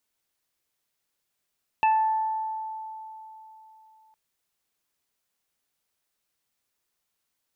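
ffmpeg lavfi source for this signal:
ffmpeg -f lavfi -i "aevalsrc='0.141*pow(10,-3*t/3.46)*sin(2*PI*877*t)+0.0178*pow(10,-3*t/1.21)*sin(2*PI*1754*t)+0.0562*pow(10,-3*t/0.32)*sin(2*PI*2631*t)':duration=2.31:sample_rate=44100" out.wav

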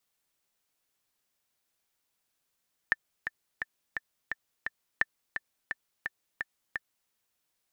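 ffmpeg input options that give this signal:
ffmpeg -f lavfi -i "aevalsrc='pow(10,(-10.5-8.5*gte(mod(t,6*60/172),60/172))/20)*sin(2*PI*1780*mod(t,60/172))*exp(-6.91*mod(t,60/172)/0.03)':duration=4.18:sample_rate=44100" out.wav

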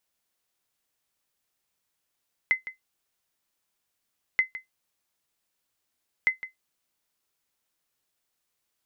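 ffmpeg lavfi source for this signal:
ffmpeg -f lavfi -i "aevalsrc='0.224*(sin(2*PI*2050*mod(t,1.88))*exp(-6.91*mod(t,1.88)/0.14)+0.188*sin(2*PI*2050*max(mod(t,1.88)-0.16,0))*exp(-6.91*max(mod(t,1.88)-0.16,0)/0.14))':duration=5.64:sample_rate=44100" out.wav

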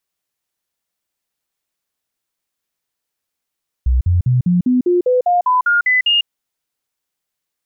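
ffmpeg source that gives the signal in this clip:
ffmpeg -f lavfi -i "aevalsrc='0.299*clip(min(mod(t,0.2),0.15-mod(t,0.2))/0.005,0,1)*sin(2*PI*62.7*pow(2,floor(t/0.2)/2)*mod(t,0.2))':duration=2.4:sample_rate=44100" out.wav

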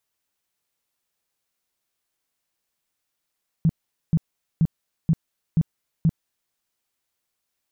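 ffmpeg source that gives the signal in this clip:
ffmpeg -f lavfi -i "aevalsrc='0.2*sin(2*PI*162*mod(t,0.48))*lt(mod(t,0.48),7/162)':duration=2.88:sample_rate=44100" out.wav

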